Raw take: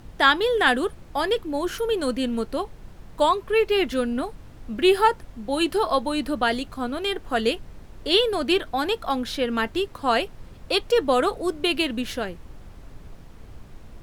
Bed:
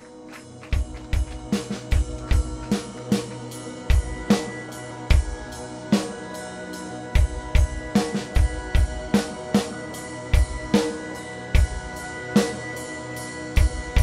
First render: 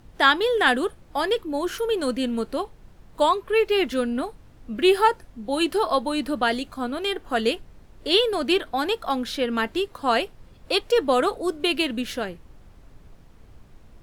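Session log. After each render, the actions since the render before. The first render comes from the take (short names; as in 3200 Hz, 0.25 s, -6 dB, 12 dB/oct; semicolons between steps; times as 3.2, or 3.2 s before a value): noise print and reduce 6 dB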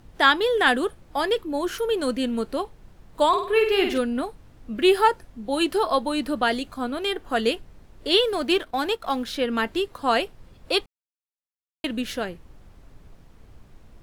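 3.28–3.98 flutter echo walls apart 8.6 m, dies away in 0.5 s; 8.24–9.36 G.711 law mismatch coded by A; 10.86–11.84 mute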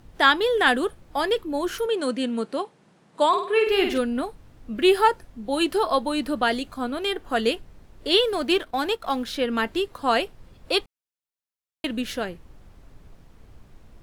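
1.86–3.67 elliptic band-pass 160–9600 Hz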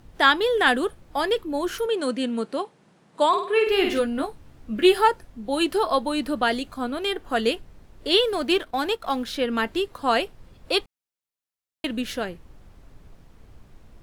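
3.83–4.98 doubler 14 ms -5.5 dB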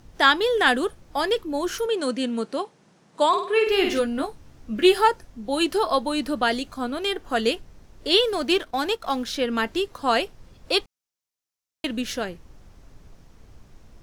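bell 5900 Hz +6.5 dB 0.67 oct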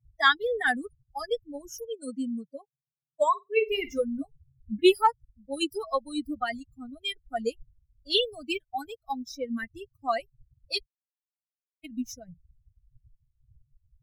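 per-bin expansion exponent 3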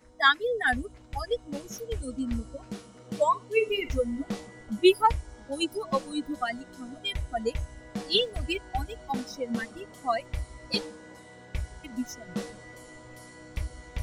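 add bed -15 dB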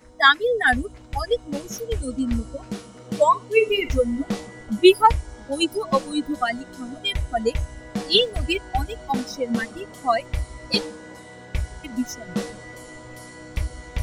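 gain +7 dB; limiter -1 dBFS, peak gain reduction 1.5 dB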